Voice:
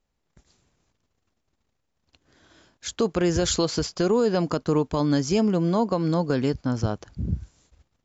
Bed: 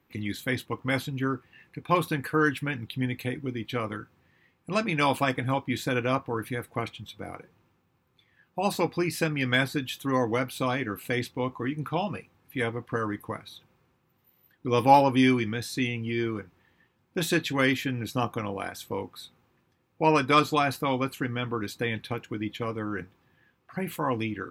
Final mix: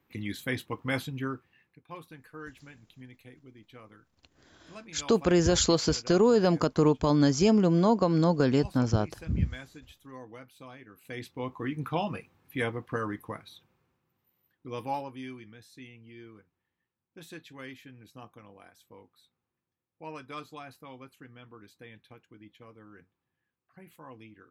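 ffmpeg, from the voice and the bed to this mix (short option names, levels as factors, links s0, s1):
-filter_complex "[0:a]adelay=2100,volume=0.944[s0];[1:a]volume=5.96,afade=t=out:st=1.07:d=0.74:silence=0.141254,afade=t=in:st=10.94:d=0.88:silence=0.11885,afade=t=out:st=12.57:d=2.6:silence=0.11885[s1];[s0][s1]amix=inputs=2:normalize=0"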